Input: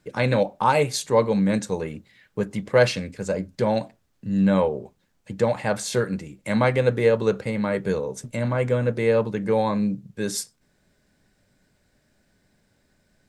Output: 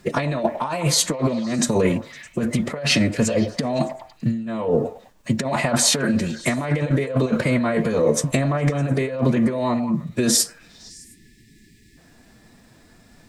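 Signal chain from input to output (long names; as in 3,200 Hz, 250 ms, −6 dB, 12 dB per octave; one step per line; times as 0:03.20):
compressor whose output falls as the input rises −29 dBFS, ratio −1
on a send: echo through a band-pass that steps 102 ms, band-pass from 600 Hz, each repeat 0.7 octaves, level −9 dB
on the sum: phase-vocoder pitch shift with formants kept +2.5 semitones
gain on a spectral selection 0:10.90–0:11.97, 440–1,700 Hz −30 dB
level +8 dB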